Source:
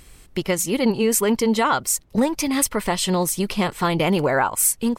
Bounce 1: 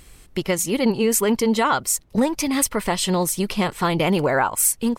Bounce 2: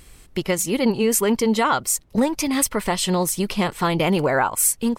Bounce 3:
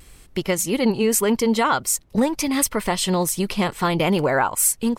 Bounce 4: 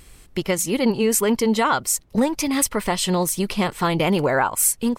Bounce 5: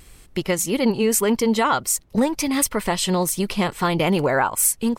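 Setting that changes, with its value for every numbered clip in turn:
vibrato, rate: 16, 3.8, 0.8, 2.5, 1.6 Hz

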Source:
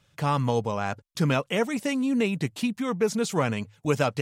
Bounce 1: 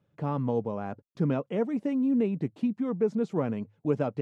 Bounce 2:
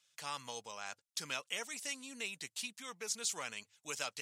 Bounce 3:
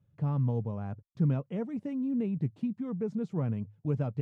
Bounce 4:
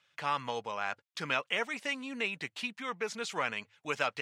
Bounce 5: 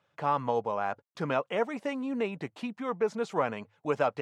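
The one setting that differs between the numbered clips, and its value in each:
band-pass, frequency: 290, 7200, 110, 2200, 820 Hz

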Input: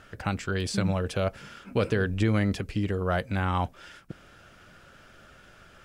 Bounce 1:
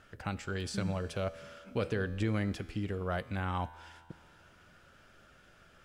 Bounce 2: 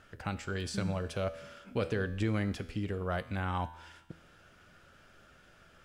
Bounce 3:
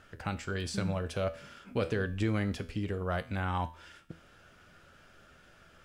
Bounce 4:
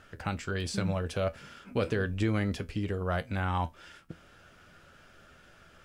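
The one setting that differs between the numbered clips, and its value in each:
resonator, decay: 2.2, 1, 0.42, 0.17 s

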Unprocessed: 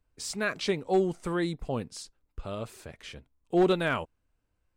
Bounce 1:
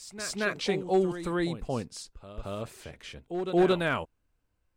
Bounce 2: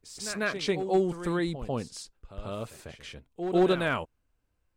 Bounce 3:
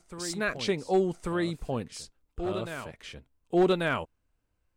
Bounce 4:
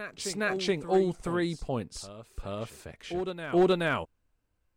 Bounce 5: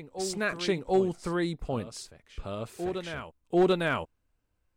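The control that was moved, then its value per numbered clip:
reverse echo, time: 0.225, 0.145, 1.14, 0.425, 0.741 s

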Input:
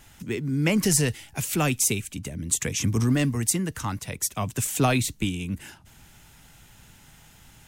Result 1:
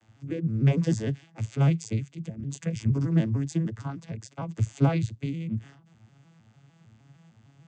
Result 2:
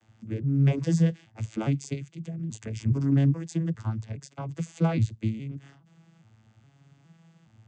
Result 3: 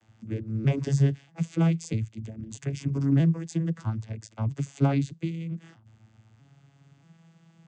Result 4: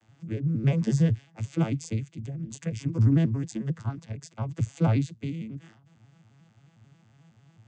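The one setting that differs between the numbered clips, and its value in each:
arpeggiated vocoder, a note every: 152, 414, 638, 90 ms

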